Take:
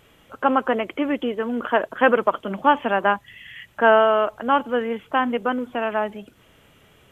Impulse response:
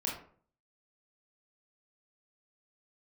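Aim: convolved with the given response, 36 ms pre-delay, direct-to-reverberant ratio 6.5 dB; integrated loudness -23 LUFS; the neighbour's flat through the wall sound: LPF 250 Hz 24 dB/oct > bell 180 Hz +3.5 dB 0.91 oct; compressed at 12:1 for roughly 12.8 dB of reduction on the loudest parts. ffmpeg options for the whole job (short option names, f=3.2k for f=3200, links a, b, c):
-filter_complex "[0:a]acompressor=threshold=-22dB:ratio=12,asplit=2[a][b];[1:a]atrim=start_sample=2205,adelay=36[c];[b][c]afir=irnorm=-1:irlink=0,volume=-10dB[d];[a][d]amix=inputs=2:normalize=0,lowpass=f=250:w=0.5412,lowpass=f=250:w=1.3066,equalizer=f=180:t=o:w=0.91:g=3.5,volume=12dB"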